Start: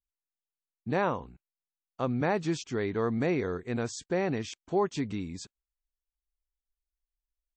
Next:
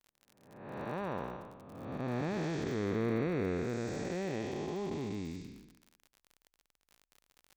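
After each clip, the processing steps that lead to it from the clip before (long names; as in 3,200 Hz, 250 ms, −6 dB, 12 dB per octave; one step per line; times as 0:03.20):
spectrum smeared in time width 541 ms
low-pass that shuts in the quiet parts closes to 1,800 Hz, open at −34 dBFS
surface crackle 55 per second −45 dBFS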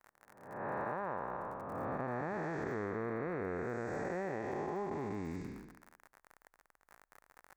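drawn EQ curve 260 Hz 0 dB, 880 Hz +10 dB, 1,800 Hz +9 dB, 3,100 Hz −12 dB, 8,300 Hz −3 dB
downward compressor, threshold −39 dBFS, peak gain reduction 13 dB
level +3.5 dB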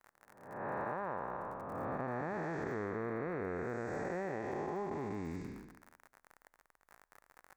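tuned comb filter 85 Hz, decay 1.3 s, harmonics all, mix 30%
level +2.5 dB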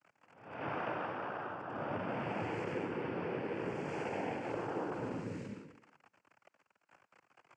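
cochlear-implant simulation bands 8
level +1 dB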